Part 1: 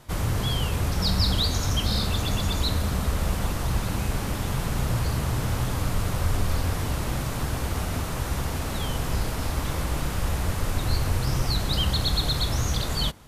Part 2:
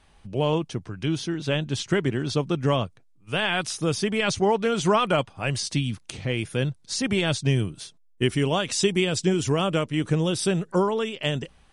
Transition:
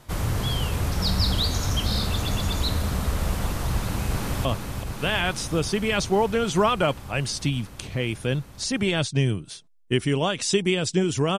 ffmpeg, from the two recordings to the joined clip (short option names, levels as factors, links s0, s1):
-filter_complex "[0:a]apad=whole_dur=11.38,atrim=end=11.38,atrim=end=4.452[s0];[1:a]atrim=start=2.748:end=9.68[s1];[s0][s1]acrossfade=d=0.004:c1=hsin:c2=hsin,asplit=2[s2][s3];[s3]afade=t=in:st=3.72:d=0.01,afade=t=out:st=4.45:d=0.01,aecho=0:1:380|760|1140|1520|1900|2280|2660|3040|3420|3800|4180|4560:0.473151|0.402179|0.341852|0.290574|0.246988|0.20994|0.178449|0.151681|0.128929|0.10959|0.0931514|0.0791787[s4];[s2][s4]amix=inputs=2:normalize=0"